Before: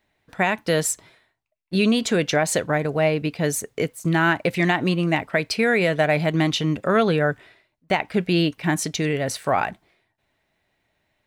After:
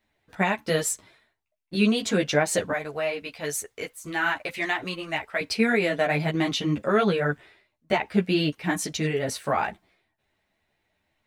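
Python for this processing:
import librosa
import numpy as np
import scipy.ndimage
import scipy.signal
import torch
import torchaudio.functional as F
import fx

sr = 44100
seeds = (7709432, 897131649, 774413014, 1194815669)

y = fx.peak_eq(x, sr, hz=180.0, db=-14.0, octaves=2.5, at=(2.72, 5.41))
y = fx.ensemble(y, sr)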